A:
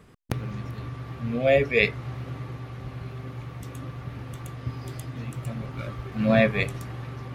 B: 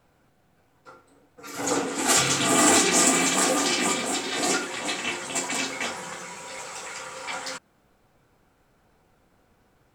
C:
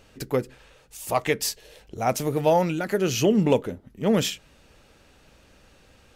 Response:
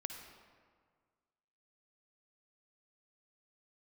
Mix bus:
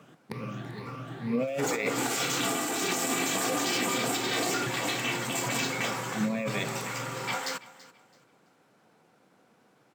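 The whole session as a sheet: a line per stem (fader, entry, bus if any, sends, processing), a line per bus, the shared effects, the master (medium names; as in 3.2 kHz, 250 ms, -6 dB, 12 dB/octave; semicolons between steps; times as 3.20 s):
-3.0 dB, 0.00 s, bus A, no send, echo send -22.5 dB, drifting ripple filter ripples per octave 0.89, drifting +2 Hz, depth 11 dB
-1.5 dB, 0.00 s, bus A, no send, echo send -16.5 dB, none
mute
bus A: 0.0 dB, compressor with a negative ratio -26 dBFS, ratio -1; peak limiter -18.5 dBFS, peak gain reduction 8.5 dB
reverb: none
echo: feedback delay 332 ms, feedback 27%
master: high-pass 150 Hz 24 dB/octave; decimation joined by straight lines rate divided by 2×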